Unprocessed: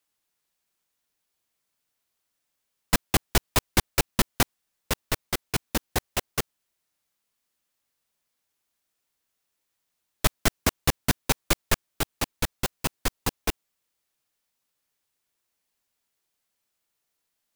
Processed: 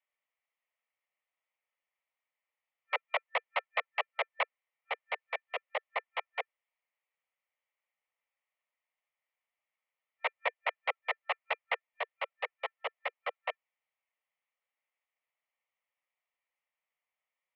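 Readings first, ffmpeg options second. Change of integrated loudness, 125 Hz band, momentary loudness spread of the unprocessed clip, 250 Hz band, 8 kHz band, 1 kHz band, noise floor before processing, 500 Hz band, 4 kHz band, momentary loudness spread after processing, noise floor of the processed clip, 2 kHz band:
−9.0 dB, below −40 dB, 8 LU, below −40 dB, below −40 dB, −4.0 dB, −80 dBFS, −6.5 dB, −13.0 dB, 7 LU, below −85 dBFS, −3.5 dB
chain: -af "superequalizer=10b=0.501:11b=1.78,afftfilt=real='re*lt(hypot(re,im),0.447)':imag='im*lt(hypot(re,im),0.447)':win_size=1024:overlap=0.75,highpass=frequency=180:width_type=q:width=0.5412,highpass=frequency=180:width_type=q:width=1.307,lowpass=frequency=2700:width_type=q:width=0.5176,lowpass=frequency=2700:width_type=q:width=0.7071,lowpass=frequency=2700:width_type=q:width=1.932,afreqshift=300,volume=-5.5dB"

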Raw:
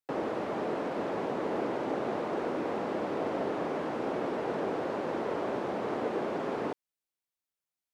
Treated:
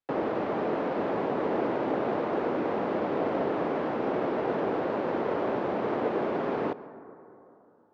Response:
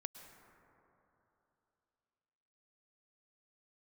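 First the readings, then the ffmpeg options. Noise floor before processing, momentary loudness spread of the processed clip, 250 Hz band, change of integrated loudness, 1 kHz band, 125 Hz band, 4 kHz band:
below −85 dBFS, 1 LU, +4.0 dB, +4.0 dB, +4.0 dB, +4.0 dB, +0.5 dB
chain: -filter_complex "[0:a]lowpass=5900,asplit=2[link_01][link_02];[1:a]atrim=start_sample=2205[link_03];[link_02][link_03]afir=irnorm=-1:irlink=0,volume=-0.5dB[link_04];[link_01][link_04]amix=inputs=2:normalize=0,adynamicsmooth=sensitivity=2.5:basefreq=3900"

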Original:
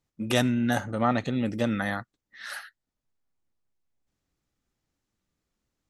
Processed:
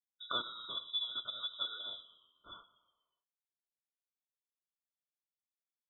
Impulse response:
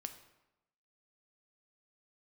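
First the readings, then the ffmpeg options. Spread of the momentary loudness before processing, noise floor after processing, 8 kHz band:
14 LU, below −85 dBFS, below −35 dB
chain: -filter_complex "[0:a]aemphasis=mode=production:type=75kf,agate=range=-30dB:threshold=-35dB:ratio=16:detection=peak,equalizer=frequency=560:width=4.6:gain=6,acrossover=split=120|3000[link_01][link_02][link_03];[link_02]acompressor=threshold=-46dB:ratio=2.5[link_04];[link_01][link_04][link_03]amix=inputs=3:normalize=0,asplit=3[link_05][link_06][link_07];[link_05]bandpass=frequency=530:width_type=q:width=8,volume=0dB[link_08];[link_06]bandpass=frequency=1840:width_type=q:width=8,volume=-6dB[link_09];[link_07]bandpass=frequency=2480:width_type=q:width=8,volume=-9dB[link_10];[link_08][link_09][link_10]amix=inputs=3:normalize=0,asplit=6[link_11][link_12][link_13][link_14][link_15][link_16];[link_12]adelay=121,afreqshift=82,volume=-19dB[link_17];[link_13]adelay=242,afreqshift=164,volume=-24dB[link_18];[link_14]adelay=363,afreqshift=246,volume=-29.1dB[link_19];[link_15]adelay=484,afreqshift=328,volume=-34.1dB[link_20];[link_16]adelay=605,afreqshift=410,volume=-39.1dB[link_21];[link_11][link_17][link_18][link_19][link_20][link_21]amix=inputs=6:normalize=0,asplit=2[link_22][link_23];[1:a]atrim=start_sample=2205[link_24];[link_23][link_24]afir=irnorm=-1:irlink=0,volume=-5dB[link_25];[link_22][link_25]amix=inputs=2:normalize=0,lowpass=frequency=3400:width_type=q:width=0.5098,lowpass=frequency=3400:width_type=q:width=0.6013,lowpass=frequency=3400:width_type=q:width=0.9,lowpass=frequency=3400:width_type=q:width=2.563,afreqshift=-4000,asuperstop=centerf=800:order=4:qfactor=4.6,afftfilt=real='re*eq(mod(floor(b*sr/1024/1500),2),0)':imag='im*eq(mod(floor(b*sr/1024/1500),2),0)':win_size=1024:overlap=0.75,volume=6dB"

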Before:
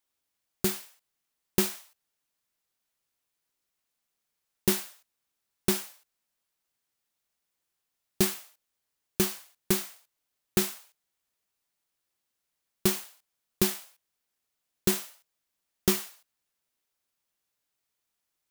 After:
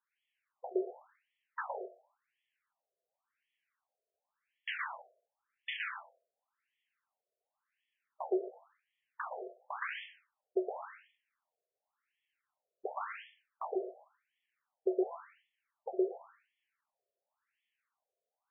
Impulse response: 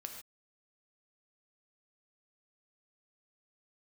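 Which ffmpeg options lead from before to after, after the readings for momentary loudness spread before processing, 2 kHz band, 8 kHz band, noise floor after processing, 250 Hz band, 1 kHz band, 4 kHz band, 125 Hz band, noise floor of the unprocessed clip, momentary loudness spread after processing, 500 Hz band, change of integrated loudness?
16 LU, −2.5 dB, below −40 dB, below −85 dBFS, −10.0 dB, +1.5 dB, −15.0 dB, below −40 dB, −83 dBFS, 15 LU, −2.5 dB, −10.5 dB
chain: -filter_complex "[0:a]lowpass=7700,acrossover=split=2600[link_01][link_02];[link_02]acompressor=threshold=-36dB:ratio=4:attack=1:release=60[link_03];[link_01][link_03]amix=inputs=2:normalize=0,asoftclip=type=tanh:threshold=-15dB,asplit=2[link_04][link_05];[1:a]atrim=start_sample=2205,adelay=116[link_06];[link_05][link_06]afir=irnorm=-1:irlink=0,volume=4.5dB[link_07];[link_04][link_07]amix=inputs=2:normalize=0,afftfilt=real='re*between(b*sr/1024,490*pow(2500/490,0.5+0.5*sin(2*PI*0.92*pts/sr))/1.41,490*pow(2500/490,0.5+0.5*sin(2*PI*0.92*pts/sr))*1.41)':imag='im*between(b*sr/1024,490*pow(2500/490,0.5+0.5*sin(2*PI*0.92*pts/sr))/1.41,490*pow(2500/490,0.5+0.5*sin(2*PI*0.92*pts/sr))*1.41)':win_size=1024:overlap=0.75,volume=3.5dB"

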